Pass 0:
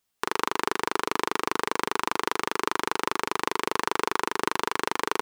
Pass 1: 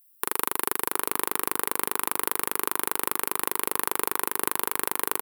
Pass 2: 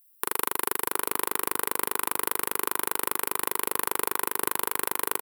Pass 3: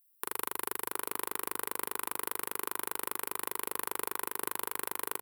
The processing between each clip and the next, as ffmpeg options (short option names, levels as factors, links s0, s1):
-filter_complex "[0:a]asplit=2[s0][s1];[s1]adelay=699.7,volume=0.0891,highshelf=f=4000:g=-15.7[s2];[s0][s2]amix=inputs=2:normalize=0,aexciter=amount=10.7:drive=6.5:freq=8900,volume=0.668"
-filter_complex "[0:a]asplit=2[s0][s1];[s1]adelay=38,volume=0.237[s2];[s0][s2]amix=inputs=2:normalize=0,volume=0.891"
-af "bandreject=f=50:t=h:w=6,bandreject=f=100:t=h:w=6,volume=0.398"